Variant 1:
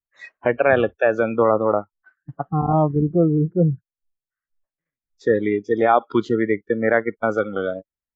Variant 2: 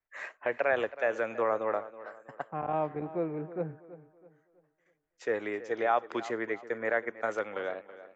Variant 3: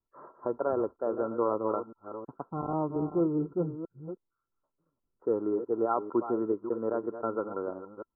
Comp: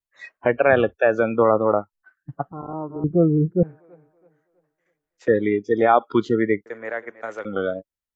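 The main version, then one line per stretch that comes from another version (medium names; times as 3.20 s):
1
2.52–3.04 s: from 3
3.63–5.28 s: from 2
6.66–7.45 s: from 2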